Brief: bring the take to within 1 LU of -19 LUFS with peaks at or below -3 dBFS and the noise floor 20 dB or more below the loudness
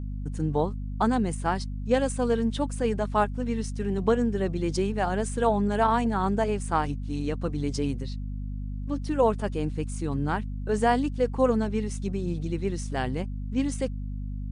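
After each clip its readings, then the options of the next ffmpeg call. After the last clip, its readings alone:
hum 50 Hz; harmonics up to 250 Hz; hum level -30 dBFS; loudness -27.5 LUFS; peak -9.5 dBFS; loudness target -19.0 LUFS
-> -af "bandreject=f=50:t=h:w=4,bandreject=f=100:t=h:w=4,bandreject=f=150:t=h:w=4,bandreject=f=200:t=h:w=4,bandreject=f=250:t=h:w=4"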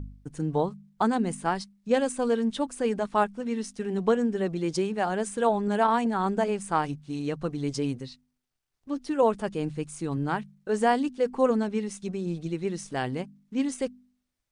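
hum none; loudness -28.0 LUFS; peak -10.5 dBFS; loudness target -19.0 LUFS
-> -af "volume=9dB,alimiter=limit=-3dB:level=0:latency=1"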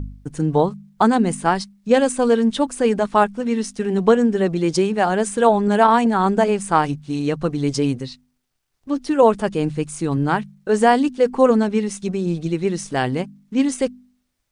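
loudness -19.5 LUFS; peak -3.0 dBFS; noise floor -71 dBFS

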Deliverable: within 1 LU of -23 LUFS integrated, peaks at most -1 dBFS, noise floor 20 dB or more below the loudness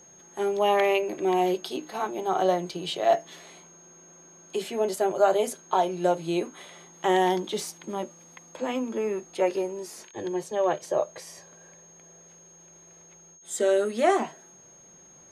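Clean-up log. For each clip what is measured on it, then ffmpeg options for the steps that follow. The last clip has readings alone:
steady tone 6500 Hz; tone level -51 dBFS; loudness -26.5 LUFS; peak -9.5 dBFS; loudness target -23.0 LUFS
-> -af "bandreject=f=6.5k:w=30"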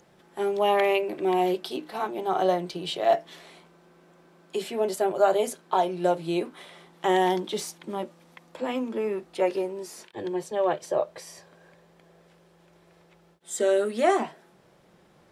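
steady tone none; loudness -27.0 LUFS; peak -9.5 dBFS; loudness target -23.0 LUFS
-> -af "volume=4dB"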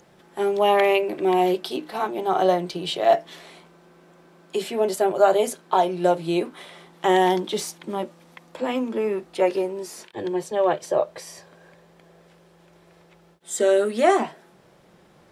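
loudness -23.0 LUFS; peak -5.5 dBFS; noise floor -55 dBFS

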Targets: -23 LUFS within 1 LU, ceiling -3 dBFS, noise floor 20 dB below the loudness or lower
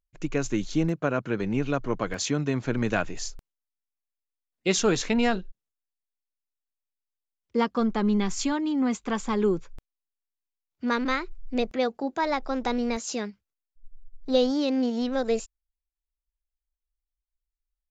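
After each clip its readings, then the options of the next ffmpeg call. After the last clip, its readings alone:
loudness -27.0 LUFS; peak -10.0 dBFS; loudness target -23.0 LUFS
-> -af "volume=4dB"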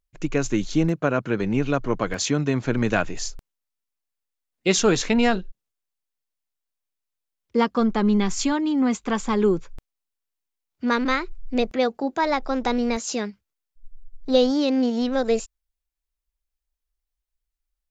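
loudness -23.0 LUFS; peak -6.0 dBFS; noise floor -83 dBFS

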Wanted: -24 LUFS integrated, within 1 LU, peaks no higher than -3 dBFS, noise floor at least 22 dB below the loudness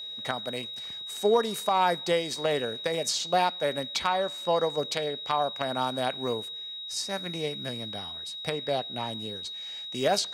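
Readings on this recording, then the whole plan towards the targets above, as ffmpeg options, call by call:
steady tone 3800 Hz; tone level -36 dBFS; loudness -29.0 LUFS; peak -11.0 dBFS; loudness target -24.0 LUFS
-> -af "bandreject=f=3.8k:w=30"
-af "volume=5dB"

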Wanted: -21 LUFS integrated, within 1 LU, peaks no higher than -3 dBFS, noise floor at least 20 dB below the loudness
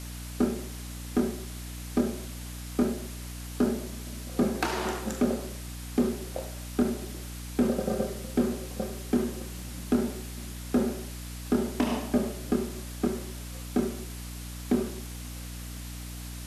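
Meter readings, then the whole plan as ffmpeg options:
hum 60 Hz; harmonics up to 300 Hz; hum level -37 dBFS; noise floor -39 dBFS; noise floor target -52 dBFS; loudness -31.5 LUFS; peak -14.0 dBFS; loudness target -21.0 LUFS
-> -af "bandreject=f=60:t=h:w=6,bandreject=f=120:t=h:w=6,bandreject=f=180:t=h:w=6,bandreject=f=240:t=h:w=6,bandreject=f=300:t=h:w=6"
-af "afftdn=nr=13:nf=-39"
-af "volume=10.5dB"

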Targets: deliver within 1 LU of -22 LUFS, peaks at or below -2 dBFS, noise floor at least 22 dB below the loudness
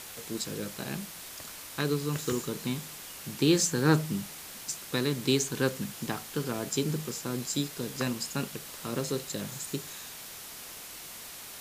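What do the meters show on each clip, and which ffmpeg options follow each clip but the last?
noise floor -44 dBFS; noise floor target -54 dBFS; loudness -32.0 LUFS; peak -10.5 dBFS; loudness target -22.0 LUFS
-> -af "afftdn=nr=10:nf=-44"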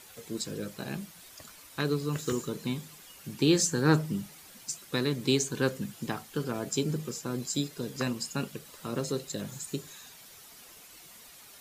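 noise floor -52 dBFS; noise floor target -54 dBFS
-> -af "afftdn=nr=6:nf=-52"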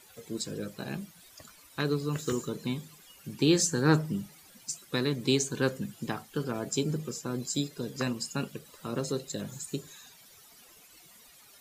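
noise floor -56 dBFS; loudness -31.5 LUFS; peak -10.5 dBFS; loudness target -22.0 LUFS
-> -af "volume=9.5dB,alimiter=limit=-2dB:level=0:latency=1"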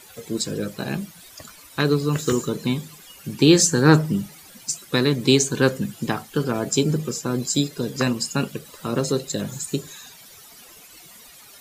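loudness -22.0 LUFS; peak -2.0 dBFS; noise floor -47 dBFS

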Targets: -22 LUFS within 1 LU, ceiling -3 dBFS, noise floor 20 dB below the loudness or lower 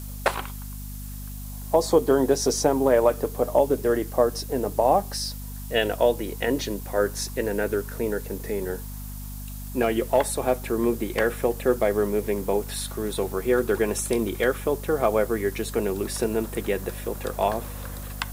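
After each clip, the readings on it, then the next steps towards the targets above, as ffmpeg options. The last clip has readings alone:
hum 50 Hz; harmonics up to 250 Hz; hum level -34 dBFS; noise floor -36 dBFS; noise floor target -45 dBFS; loudness -25.0 LUFS; peak -6.5 dBFS; loudness target -22.0 LUFS
-> -af "bandreject=f=50:t=h:w=4,bandreject=f=100:t=h:w=4,bandreject=f=150:t=h:w=4,bandreject=f=200:t=h:w=4,bandreject=f=250:t=h:w=4"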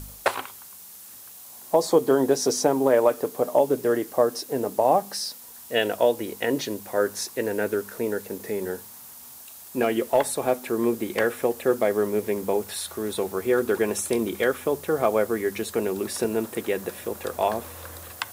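hum none; noise floor -44 dBFS; noise floor target -45 dBFS
-> -af "afftdn=nr=6:nf=-44"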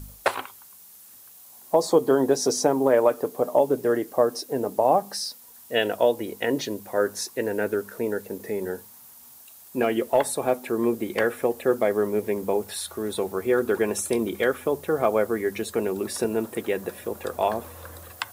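noise floor -49 dBFS; loudness -25.0 LUFS; peak -6.5 dBFS; loudness target -22.0 LUFS
-> -af "volume=3dB"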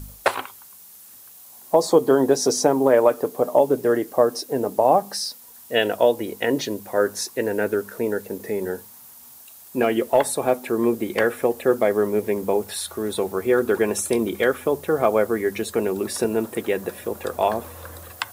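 loudness -22.0 LUFS; peak -3.5 dBFS; noise floor -46 dBFS

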